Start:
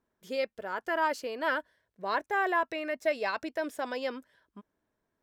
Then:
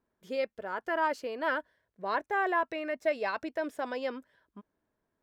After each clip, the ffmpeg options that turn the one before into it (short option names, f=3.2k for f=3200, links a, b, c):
-af "highshelf=f=3.6k:g=-8"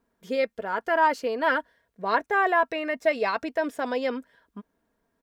-af "aecho=1:1:4.3:0.39,volume=6.5dB"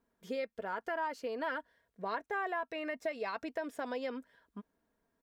-af "acompressor=threshold=-30dB:ratio=3,volume=-5.5dB"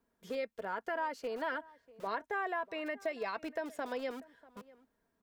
-filter_complex "[0:a]acrossover=split=210|1800[a][b][c];[a]aeval=exprs='(mod(376*val(0)+1,2)-1)/376':c=same[d];[d][b][c]amix=inputs=3:normalize=0,asplit=2[e][f];[f]adelay=641.4,volume=-21dB,highshelf=f=4k:g=-14.4[g];[e][g]amix=inputs=2:normalize=0"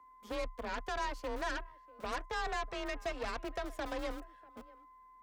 -af "aeval=exprs='val(0)+0.002*sin(2*PI*1000*n/s)':c=same,aeval=exprs='0.0631*(cos(1*acos(clip(val(0)/0.0631,-1,1)))-cos(1*PI/2))+0.0112*(cos(8*acos(clip(val(0)/0.0631,-1,1)))-cos(8*PI/2))':c=same,afreqshift=31,volume=-2.5dB"